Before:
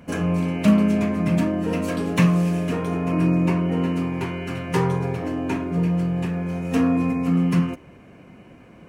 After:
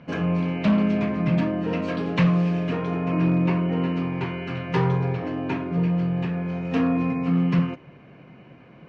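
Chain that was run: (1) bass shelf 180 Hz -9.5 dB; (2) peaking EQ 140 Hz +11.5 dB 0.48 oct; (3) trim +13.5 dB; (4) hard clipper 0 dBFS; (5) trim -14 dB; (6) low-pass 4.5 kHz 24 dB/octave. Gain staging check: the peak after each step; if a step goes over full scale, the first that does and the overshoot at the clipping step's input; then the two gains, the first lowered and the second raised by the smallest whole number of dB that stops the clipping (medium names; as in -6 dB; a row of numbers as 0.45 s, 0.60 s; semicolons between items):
-9.0 dBFS, -5.0 dBFS, +8.5 dBFS, 0.0 dBFS, -14.0 dBFS, -13.0 dBFS; step 3, 8.5 dB; step 3 +4.5 dB, step 5 -5 dB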